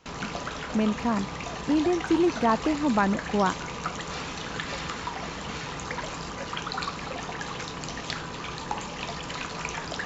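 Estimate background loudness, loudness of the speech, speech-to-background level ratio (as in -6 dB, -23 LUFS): -34.0 LUFS, -26.0 LUFS, 8.0 dB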